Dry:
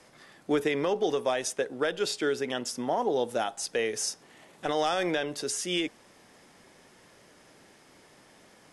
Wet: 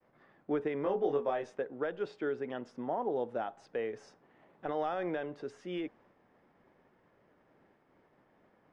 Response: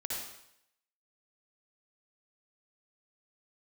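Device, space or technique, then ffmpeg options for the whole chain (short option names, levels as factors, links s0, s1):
hearing-loss simulation: -filter_complex "[0:a]lowpass=1500,agate=range=0.0224:threshold=0.00178:ratio=3:detection=peak,asettb=1/sr,asplit=3[s0][s1][s2];[s0]atrim=end=0.834[s3];[s1]atrim=start=0.83:end=1.6,asetpts=PTS-STARTPTS,afade=t=in:d=0.004:c=qsin,afade=t=out:st=0.766:d=0.004:c=qsin,asplit=2[s4][s5];[s5]adelay=21,volume=0.75[s6];[s4][s6]amix=inputs=2:normalize=0,atrim=end_sample=33957[s7];[s2]atrim=start=1.596[s8];[s3][s7]acrossfade=d=0.004:c1=hsin:c2=qsin[s9];[s9][s8]acrossfade=d=0.004:c1=qsin:c2=hsin,volume=0.501"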